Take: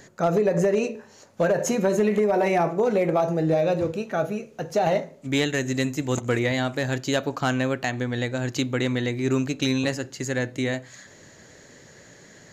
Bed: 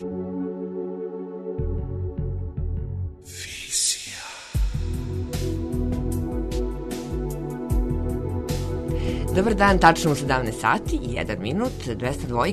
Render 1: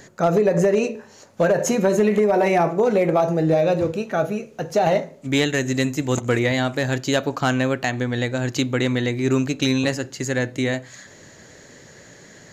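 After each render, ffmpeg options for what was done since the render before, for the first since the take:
ffmpeg -i in.wav -af "volume=3.5dB" out.wav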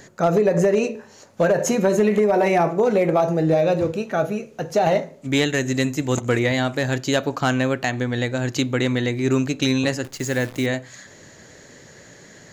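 ffmpeg -i in.wav -filter_complex "[0:a]asettb=1/sr,asplit=3[link_01][link_02][link_03];[link_01]atrim=end=10.044[link_04];[link_02]atrim=start=10.04:end=10.66,asetpts=PTS-STARTPTS,afade=type=in:duration=0.004:curve=qsin,afade=type=out:start_time=0.616:duration=0.004:curve=qsin,acrusher=bits=7:dc=4:mix=0:aa=0.000001[link_05];[link_03]atrim=start=10.656[link_06];[link_04][link_05]acrossfade=duration=0.004:curve1=hsin:curve2=qsin[link_07];[link_07][link_06]acrossfade=duration=0.004:curve1=qsin:curve2=hsin" out.wav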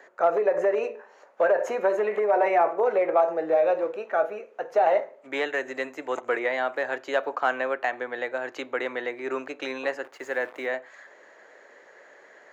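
ffmpeg -i in.wav -filter_complex "[0:a]highpass=310,acrossover=split=420 2200:gain=0.0708 1 0.0794[link_01][link_02][link_03];[link_01][link_02][link_03]amix=inputs=3:normalize=0" out.wav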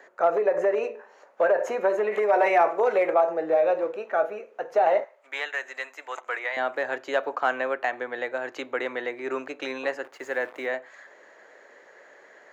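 ffmpeg -i in.wav -filter_complex "[0:a]asettb=1/sr,asplit=3[link_01][link_02][link_03];[link_01]atrim=end=2.124[link_04];[link_02]atrim=start=2.12:end=3.14,asetpts=PTS-STARTPTS,afade=type=in:duration=0.004:curve=qsin,afade=type=out:start_time=1.016:duration=0.004:curve=qsin,highshelf=frequency=2100:gain=9.5[link_05];[link_03]atrim=start=3.136[link_06];[link_04][link_05]acrossfade=duration=0.004:curve1=hsin:curve2=qsin[link_07];[link_07][link_06]acrossfade=duration=0.004:curve1=qsin:curve2=hsin,asettb=1/sr,asplit=3[link_08][link_09][link_10];[link_08]atrim=end=5.044[link_11];[link_09]atrim=start=5.04:end=6.57,asetpts=PTS-STARTPTS,afade=type=in:duration=0.004:curve=qsin,afade=type=out:start_time=1.526:duration=0.004:curve=qsin,highpass=900[link_12];[link_10]atrim=start=6.566[link_13];[link_11][link_12]acrossfade=duration=0.004:curve1=hsin:curve2=qsin[link_14];[link_14][link_13]acrossfade=duration=0.004:curve1=qsin:curve2=hsin" out.wav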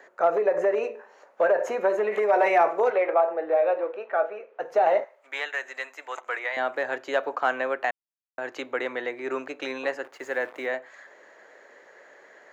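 ffmpeg -i in.wav -filter_complex "[0:a]asettb=1/sr,asplit=3[link_01][link_02][link_03];[link_01]atrim=end=2.904[link_04];[link_02]atrim=start=2.9:end=4.6,asetpts=PTS-STARTPTS,afade=type=in:duration=0.004:curve=qsin,afade=type=out:start_time=1.696:duration=0.004:curve=qsin,highpass=380,lowpass=3100[link_05];[link_03]atrim=start=4.596[link_06];[link_04][link_05]acrossfade=duration=0.004:curve1=hsin:curve2=qsin[link_07];[link_07][link_06]acrossfade=duration=0.004:curve1=qsin:curve2=hsin,asplit=3[link_08][link_09][link_10];[link_08]atrim=end=7.91,asetpts=PTS-STARTPTS,afade=type=out:start_time=7.906:duration=0.004:curve=hsin[link_11];[link_09]atrim=start=7.91:end=8.38,asetpts=PTS-STARTPTS,volume=0[link_12];[link_10]atrim=start=8.38,asetpts=PTS-STARTPTS,afade=type=in:duration=0.004:curve=hsin[link_13];[link_11][link_12][link_13]concat=n=3:v=0:a=1" out.wav

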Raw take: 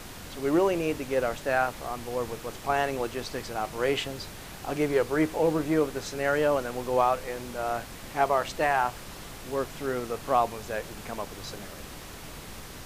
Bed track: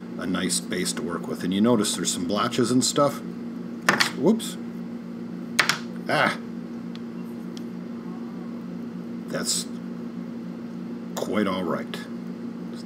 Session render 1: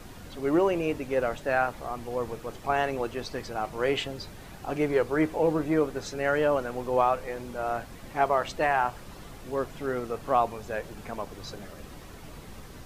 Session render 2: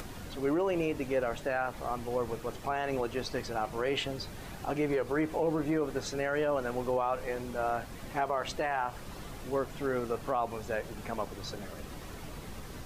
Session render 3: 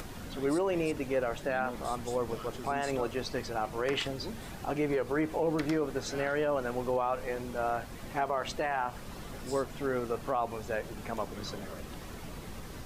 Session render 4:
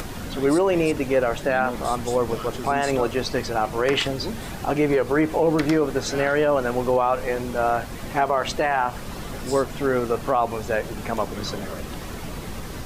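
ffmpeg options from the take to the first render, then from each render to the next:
ffmpeg -i in.wav -af "afftdn=noise_reduction=8:noise_floor=-43" out.wav
ffmpeg -i in.wav -af "alimiter=limit=-21dB:level=0:latency=1:release=90,acompressor=mode=upward:threshold=-38dB:ratio=2.5" out.wav
ffmpeg -i in.wav -i bed.wav -filter_complex "[1:a]volume=-22.5dB[link_01];[0:a][link_01]amix=inputs=2:normalize=0" out.wav
ffmpeg -i in.wav -af "volume=10dB" out.wav

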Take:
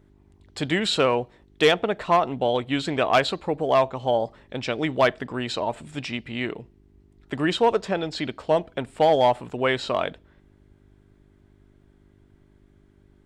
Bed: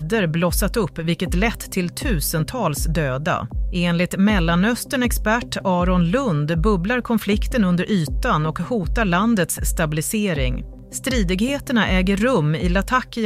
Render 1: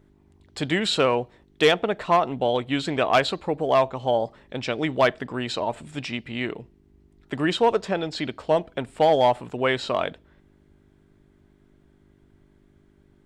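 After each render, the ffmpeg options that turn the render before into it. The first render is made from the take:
ffmpeg -i in.wav -af "bandreject=frequency=50:width_type=h:width=4,bandreject=frequency=100:width_type=h:width=4" out.wav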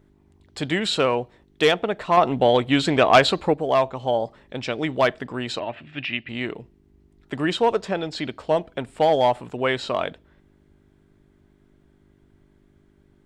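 ffmpeg -i in.wav -filter_complex "[0:a]asettb=1/sr,asplit=3[link_01][link_02][link_03];[link_01]atrim=end=2.174[link_04];[link_02]atrim=start=2.17:end=3.54,asetpts=PTS-STARTPTS,afade=type=in:duration=0.004:curve=qsin,afade=type=out:start_time=1.366:duration=0.004:curve=qsin,acontrast=50[link_05];[link_03]atrim=start=3.536[link_06];[link_04][link_05]acrossfade=duration=0.004:curve1=hsin:curve2=qsin[link_07];[link_07][link_06]acrossfade=duration=0.004:curve1=qsin:curve2=hsin,asettb=1/sr,asplit=3[link_08][link_09][link_10];[link_08]atrim=end=5.594[link_11];[link_09]atrim=start=5.59:end=6.29,asetpts=PTS-STARTPTS,afade=type=in:duration=0.004:curve=qsin,afade=type=out:start_time=0.696:duration=0.004:curve=qsin,highpass=100,equalizer=frequency=190:width_type=q:width=4:gain=-9,equalizer=frequency=460:width_type=q:width=4:gain=-9,equalizer=frequency=920:width_type=q:width=4:gain=-7,equalizer=frequency=1800:width_type=q:width=4:gain=7,equalizer=frequency=2700:width_type=q:width=4:gain=9,lowpass=frequency=3700:width=0.5412,lowpass=frequency=3700:width=1.3066[link_12];[link_10]atrim=start=6.286[link_13];[link_11][link_12]acrossfade=duration=0.004:curve1=hsin:curve2=qsin[link_14];[link_14][link_13]acrossfade=duration=0.004:curve1=qsin:curve2=hsin" out.wav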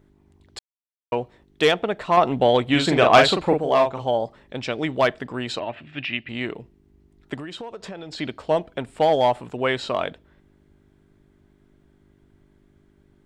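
ffmpeg -i in.wav -filter_complex "[0:a]asettb=1/sr,asplit=3[link_01][link_02][link_03];[link_01]atrim=end=2.664[link_04];[link_02]atrim=start=2.66:end=4.04,asetpts=PTS-STARTPTS,afade=type=in:duration=0.004:curve=qsin,afade=type=out:start_time=1.376:duration=0.004:curve=qsin,asplit=2[link_05][link_06];[link_06]adelay=41,volume=-4.5dB[link_07];[link_05][link_07]amix=inputs=2:normalize=0,atrim=end_sample=60858[link_08];[link_03]atrim=start=4.036[link_09];[link_04][link_08]acrossfade=duration=0.004:curve1=hsin:curve2=qsin[link_10];[link_10][link_09]acrossfade=duration=0.004:curve1=qsin:curve2=hsin,asettb=1/sr,asplit=3[link_11][link_12][link_13];[link_11]atrim=end=7.344[link_14];[link_12]atrim=start=7.34:end=8.19,asetpts=PTS-STARTPTS,afade=type=in:duration=0.004:curve=qsin,afade=type=out:start_time=0.846:duration=0.004:curve=qsin,acompressor=threshold=-31dB:ratio=16:attack=3.2:release=140:knee=1:detection=peak[link_15];[link_13]atrim=start=8.186[link_16];[link_14][link_15]acrossfade=duration=0.004:curve1=hsin:curve2=qsin[link_17];[link_17][link_16]acrossfade=duration=0.004:curve1=qsin:curve2=hsin,asplit=3[link_18][link_19][link_20];[link_18]atrim=end=0.59,asetpts=PTS-STARTPTS,afade=type=out:start_time=0.586:duration=0.004:curve=hsin[link_21];[link_19]atrim=start=0.59:end=1.12,asetpts=PTS-STARTPTS,volume=0[link_22];[link_20]atrim=start=1.12,asetpts=PTS-STARTPTS,afade=type=in:duration=0.004:curve=hsin[link_23];[link_21][link_22][link_23]concat=n=3:v=0:a=1" out.wav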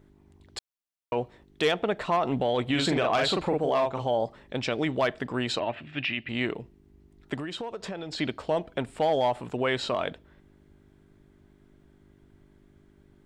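ffmpeg -i in.wav -af "acompressor=threshold=-21dB:ratio=2,alimiter=limit=-17dB:level=0:latency=1:release=17" out.wav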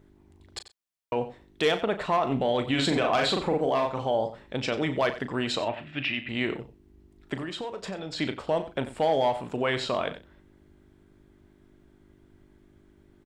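ffmpeg -i in.wav -filter_complex "[0:a]asplit=2[link_01][link_02];[link_02]adelay=37,volume=-11dB[link_03];[link_01][link_03]amix=inputs=2:normalize=0,aecho=1:1:91:0.2" out.wav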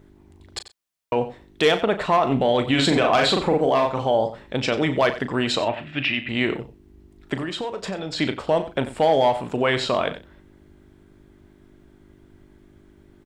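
ffmpeg -i in.wav -af "volume=6dB" out.wav

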